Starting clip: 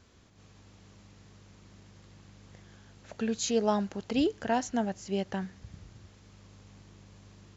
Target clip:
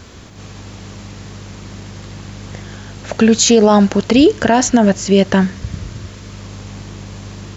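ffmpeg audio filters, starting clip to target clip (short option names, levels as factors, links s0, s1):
-filter_complex "[0:a]asettb=1/sr,asplit=3[s0][s1][s2];[s0]atrim=end=3.954[s3];[s1]atrim=start=3.95:end=6.38,asetpts=PTS-STARTPTS,afade=t=in:d=0.004:c=qsin,afade=t=out:st=2.426:d=0.004:c=qsin,asuperstop=centerf=800:order=4:qfactor=7.9[s4];[s2]atrim=start=6.376[s5];[s3][s4]acrossfade=d=0.004:c1=hsin:c2=qsin[s6];[s6][s5]acrossfade=d=0.004:c1=qsin:c2=hsin,alimiter=level_in=15:limit=0.891:release=50:level=0:latency=1,volume=0.891"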